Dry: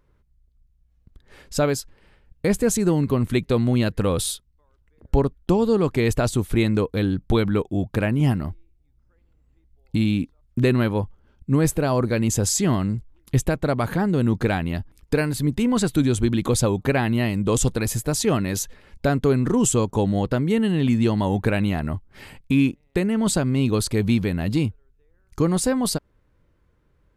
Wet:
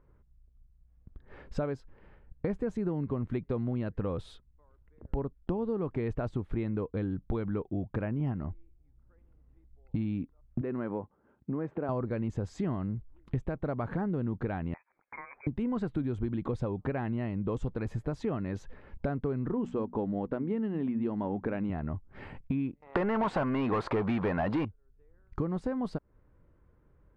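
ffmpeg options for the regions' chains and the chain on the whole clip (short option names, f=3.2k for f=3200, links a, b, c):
-filter_complex "[0:a]asettb=1/sr,asplit=3[a][b][c];[a]atrim=end=10.614[d];[b]atrim=start=10.61:end=11.89,asetpts=PTS-STARTPTS,afade=t=in:d=0.004:c=qsin,afade=t=out:st=1.276:d=0.004:c=qsin,acompressor=threshold=-22dB:ratio=2.5:attack=3.2:release=140:knee=1:detection=peak,highpass=210,lowpass=2.2k[e];[c]atrim=start=11.886[f];[d][e]acrossfade=d=0.004:c1=hsin:c2=qsin[g];[g][f]acrossfade=d=0.004:c1=qsin:c2=hsin,asettb=1/sr,asplit=3[h][i][j];[h]atrim=end=14.744[k];[i]atrim=start=14.74:end=15.47,asetpts=PTS-STARTPTS,afade=t=in:d=0.004:c=qsin,afade=t=out:st=0.726:d=0.004:c=qsin,highpass=550,acompressor=threshold=-37dB:ratio=4:attack=3.2:release=140:knee=1:detection=peak,lowpass=f=2.2k:t=q:w=0.5098,lowpass=f=2.2k:t=q:w=0.6013,lowpass=f=2.2k:t=q:w=0.9,lowpass=f=2.2k:t=q:w=2.563,afreqshift=-2600[l];[j]atrim=start=15.466[m];[k][l]acrossfade=d=0.004:c1=hsin:c2=qsin[n];[n][m]acrossfade=d=0.004:c1=qsin:c2=hsin,asettb=1/sr,asplit=3[o][p][q];[o]atrim=end=19.534[r];[p]atrim=start=19.53:end=21.7,asetpts=PTS-STARTPTS,afade=t=in:d=0.004:c=qsin,afade=t=out:st=2.166:d=0.004:c=qsin,lowshelf=f=170:t=q:w=1.5:g=-7,bandreject=f=60:t=h:w=6,bandreject=f=120:t=h:w=6,bandreject=f=180:t=h:w=6,bandreject=f=240:t=h:w=6,adynamicsmooth=sensitivity=1.5:basefreq=3.1k[s];[q]atrim=start=21.696[t];[r][s]acrossfade=d=0.004:c1=hsin:c2=qsin[u];[u][t]acrossfade=d=0.004:c1=qsin:c2=hsin,asettb=1/sr,asplit=3[v][w][x];[v]atrim=end=22.824[y];[w]atrim=start=22.82:end=24.65,asetpts=PTS-STARTPTS,afade=t=in:d=0.004:c=qsin,afade=t=out:st=1.826:d=0.004:c=qsin,equalizer=f=950:w=0.8:g=14,asplit=2[z][aa];[aa]highpass=f=720:p=1,volume=26dB,asoftclip=type=tanh:threshold=-3.5dB[ab];[z][ab]amix=inputs=2:normalize=0,lowpass=f=6.7k:p=1,volume=-6dB[ac];[x]atrim=start=24.646[ad];[y][ac]acrossfade=d=0.004:c1=hsin:c2=qsin[ae];[ae][ad]acrossfade=d=0.004:c1=qsin:c2=hsin,lowpass=1.5k,acompressor=threshold=-31dB:ratio=4"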